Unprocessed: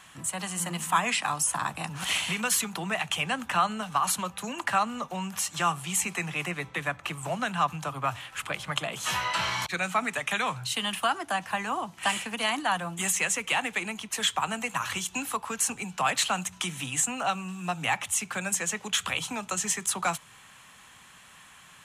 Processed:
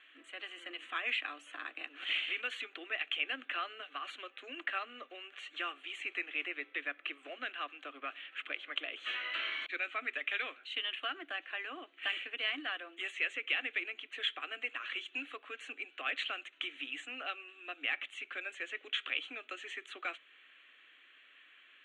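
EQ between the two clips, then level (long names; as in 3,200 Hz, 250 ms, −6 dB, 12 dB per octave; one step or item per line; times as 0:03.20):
linear-phase brick-wall high-pass 260 Hz
transistor ladder low-pass 4,000 Hz, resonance 35%
phaser with its sweep stopped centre 2,200 Hz, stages 4
0.0 dB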